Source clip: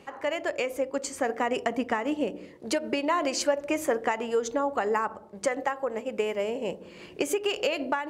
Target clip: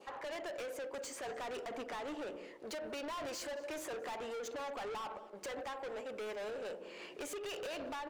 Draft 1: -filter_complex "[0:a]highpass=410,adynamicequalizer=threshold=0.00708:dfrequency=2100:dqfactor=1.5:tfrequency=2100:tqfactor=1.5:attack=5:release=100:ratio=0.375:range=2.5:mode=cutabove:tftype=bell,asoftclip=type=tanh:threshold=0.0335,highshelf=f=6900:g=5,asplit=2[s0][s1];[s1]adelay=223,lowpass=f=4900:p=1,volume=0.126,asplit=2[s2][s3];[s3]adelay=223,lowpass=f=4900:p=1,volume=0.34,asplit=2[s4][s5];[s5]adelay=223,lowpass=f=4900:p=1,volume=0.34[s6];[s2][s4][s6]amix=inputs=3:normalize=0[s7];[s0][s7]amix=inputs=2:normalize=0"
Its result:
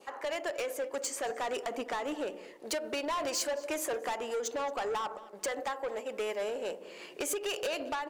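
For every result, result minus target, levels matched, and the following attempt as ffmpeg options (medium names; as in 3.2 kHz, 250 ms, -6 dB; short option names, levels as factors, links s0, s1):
8 kHz band +4.0 dB; saturation: distortion -5 dB
-filter_complex "[0:a]highpass=410,adynamicequalizer=threshold=0.00708:dfrequency=2100:dqfactor=1.5:tfrequency=2100:tqfactor=1.5:attack=5:release=100:ratio=0.375:range=2.5:mode=cutabove:tftype=bell,asoftclip=type=tanh:threshold=0.0335,highshelf=f=6900:g=-6.5,asplit=2[s0][s1];[s1]adelay=223,lowpass=f=4900:p=1,volume=0.126,asplit=2[s2][s3];[s3]adelay=223,lowpass=f=4900:p=1,volume=0.34,asplit=2[s4][s5];[s5]adelay=223,lowpass=f=4900:p=1,volume=0.34[s6];[s2][s4][s6]amix=inputs=3:normalize=0[s7];[s0][s7]amix=inputs=2:normalize=0"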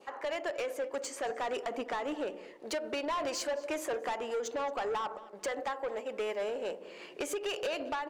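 saturation: distortion -5 dB
-filter_complex "[0:a]highpass=410,adynamicequalizer=threshold=0.00708:dfrequency=2100:dqfactor=1.5:tfrequency=2100:tqfactor=1.5:attack=5:release=100:ratio=0.375:range=2.5:mode=cutabove:tftype=bell,asoftclip=type=tanh:threshold=0.01,highshelf=f=6900:g=-6.5,asplit=2[s0][s1];[s1]adelay=223,lowpass=f=4900:p=1,volume=0.126,asplit=2[s2][s3];[s3]adelay=223,lowpass=f=4900:p=1,volume=0.34,asplit=2[s4][s5];[s5]adelay=223,lowpass=f=4900:p=1,volume=0.34[s6];[s2][s4][s6]amix=inputs=3:normalize=0[s7];[s0][s7]amix=inputs=2:normalize=0"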